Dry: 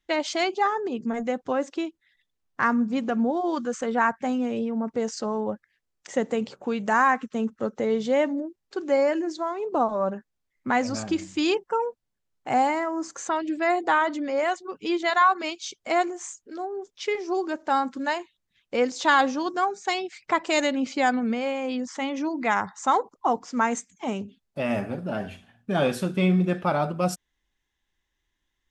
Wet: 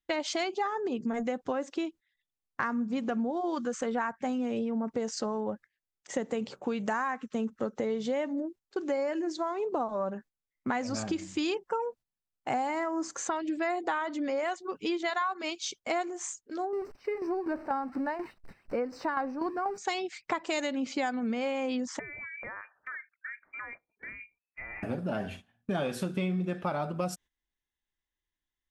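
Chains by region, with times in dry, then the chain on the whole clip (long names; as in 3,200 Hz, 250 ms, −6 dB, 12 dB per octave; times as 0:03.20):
0:16.73–0:19.78: converter with a step at zero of −34.5 dBFS + moving average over 13 samples + shaped tremolo saw down 4.1 Hz, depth 65%
0:21.99–0:24.83: low-shelf EQ 380 Hz −11.5 dB + downward compressor 4 to 1, threshold −40 dBFS + voice inversion scrambler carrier 2,600 Hz
whole clip: noise gate −45 dBFS, range −13 dB; downward compressor 6 to 1, threshold −28 dBFS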